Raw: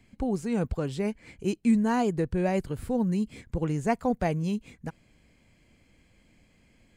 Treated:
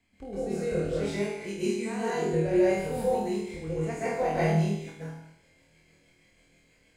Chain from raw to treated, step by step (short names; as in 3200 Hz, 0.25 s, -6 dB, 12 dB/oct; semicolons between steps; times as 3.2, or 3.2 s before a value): low shelf 300 Hz -8.5 dB; notches 60/120/180/240 Hz; rotary speaker horn 0.6 Hz, later 6.3 Hz, at 4.17; on a send: flutter echo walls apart 4.3 m, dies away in 0.57 s; on the sum: plate-style reverb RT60 0.68 s, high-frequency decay 0.95×, pre-delay 0.12 s, DRR -8 dB; gain -6 dB